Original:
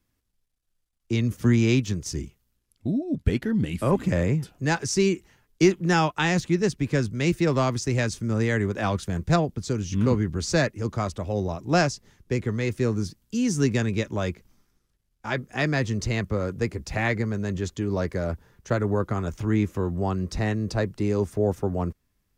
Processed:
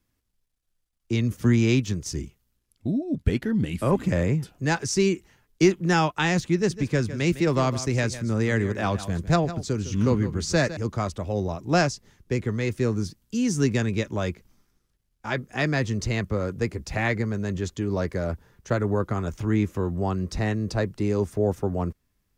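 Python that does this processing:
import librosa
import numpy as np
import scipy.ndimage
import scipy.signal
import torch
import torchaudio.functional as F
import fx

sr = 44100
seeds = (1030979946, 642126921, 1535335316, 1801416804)

y = fx.echo_single(x, sr, ms=156, db=-13.5, at=(6.55, 10.77))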